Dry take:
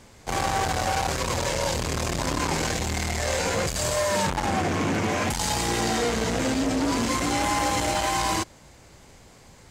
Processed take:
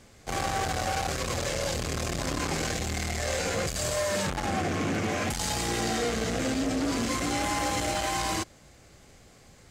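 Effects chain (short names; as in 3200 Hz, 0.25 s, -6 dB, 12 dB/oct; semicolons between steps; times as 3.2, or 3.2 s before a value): notch 940 Hz, Q 5.6; gain -3.5 dB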